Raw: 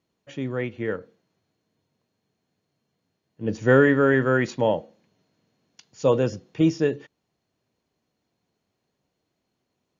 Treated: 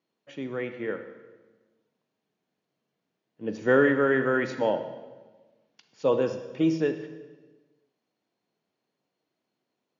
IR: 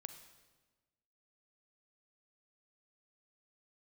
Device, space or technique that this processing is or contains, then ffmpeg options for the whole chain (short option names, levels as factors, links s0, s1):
supermarket ceiling speaker: -filter_complex "[0:a]highpass=210,lowpass=5400[s0];[1:a]atrim=start_sample=2205[s1];[s0][s1]afir=irnorm=-1:irlink=0,asettb=1/sr,asplit=3[s2][s3][s4];[s2]atrim=end=4.704[s5];[s3]atrim=start=4.7:end=6.22,asetpts=PTS-STARTPTS,afade=t=in:d=0.004:c=qsin,afade=t=out:st=1.516:d=0.004:c=qsin,lowpass=5600[s6];[s4]atrim=start=6.216[s7];[s5][s6]acrossfade=d=0.004:c1=hsin:c2=qsin[s8];[s8][s7]acrossfade=d=0.004:c1=qsin:c2=hsin,volume=1.26"